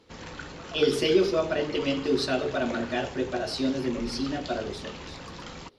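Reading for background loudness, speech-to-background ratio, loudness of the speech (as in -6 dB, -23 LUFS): -40.5 LUFS, 13.0 dB, -27.5 LUFS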